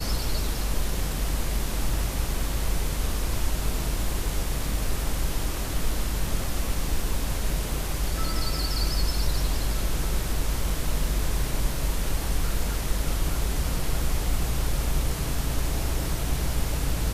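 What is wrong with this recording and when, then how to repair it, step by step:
10.70 s: dropout 2.3 ms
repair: interpolate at 10.70 s, 2.3 ms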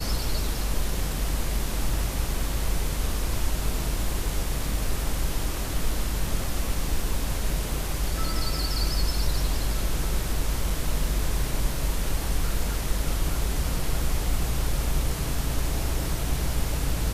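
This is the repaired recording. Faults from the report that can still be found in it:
nothing left

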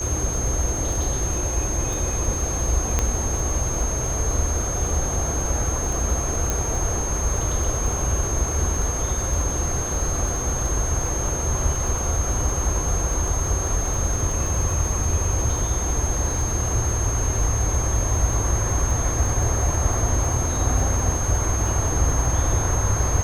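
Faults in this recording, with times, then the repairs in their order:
crackle 26 per s -27 dBFS
whine 6.4 kHz -27 dBFS
2.99 s: pop -6 dBFS
6.50 s: pop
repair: de-click; band-stop 6.4 kHz, Q 30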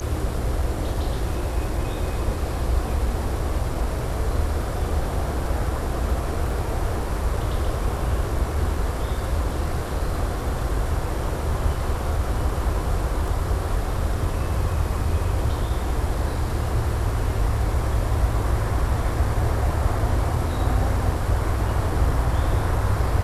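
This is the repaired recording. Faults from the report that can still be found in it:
6.50 s: pop

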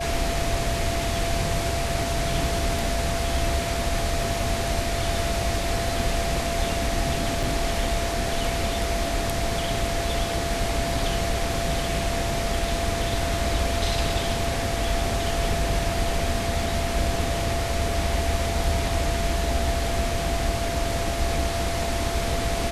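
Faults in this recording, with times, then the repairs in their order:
whine 680 Hz -29 dBFS
7.43 s: dropout 4.4 ms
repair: band-stop 680 Hz, Q 30; interpolate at 7.43 s, 4.4 ms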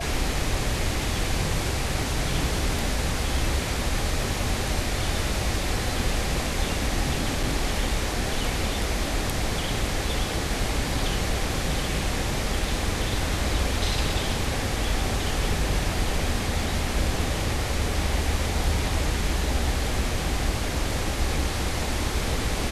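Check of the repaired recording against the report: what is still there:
nothing left

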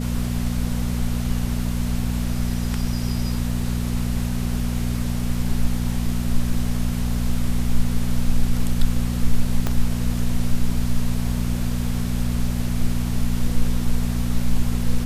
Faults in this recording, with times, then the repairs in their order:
hum 60 Hz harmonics 4 -24 dBFS
9.67 s: pop -9 dBFS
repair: de-click; de-hum 60 Hz, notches 4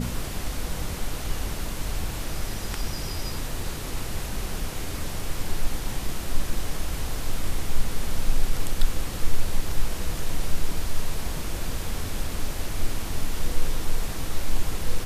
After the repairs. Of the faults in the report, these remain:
9.67 s: pop

